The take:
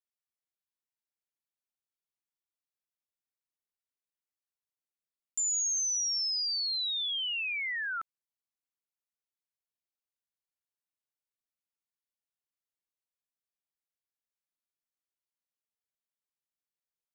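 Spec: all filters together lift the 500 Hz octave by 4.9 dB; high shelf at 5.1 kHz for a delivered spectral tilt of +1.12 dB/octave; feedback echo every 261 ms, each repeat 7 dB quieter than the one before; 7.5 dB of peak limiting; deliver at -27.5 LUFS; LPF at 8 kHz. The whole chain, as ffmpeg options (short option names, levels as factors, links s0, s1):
-af "lowpass=8000,equalizer=f=500:t=o:g=6,highshelf=f=5100:g=8,alimiter=level_in=2.11:limit=0.0631:level=0:latency=1,volume=0.473,aecho=1:1:261|522|783|1044|1305:0.447|0.201|0.0905|0.0407|0.0183,volume=1.41"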